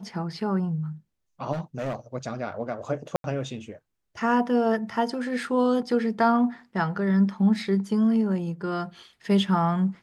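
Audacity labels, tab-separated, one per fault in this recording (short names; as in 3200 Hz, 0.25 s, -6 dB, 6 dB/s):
1.520000	1.950000	clipped -26 dBFS
3.160000	3.240000	gap 82 ms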